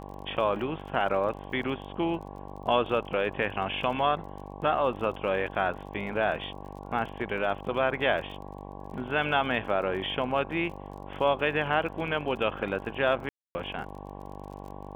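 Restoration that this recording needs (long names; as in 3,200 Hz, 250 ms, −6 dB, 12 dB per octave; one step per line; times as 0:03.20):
click removal
hum removal 48.9 Hz, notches 23
notch filter 800 Hz, Q 30
ambience match 0:13.29–0:13.55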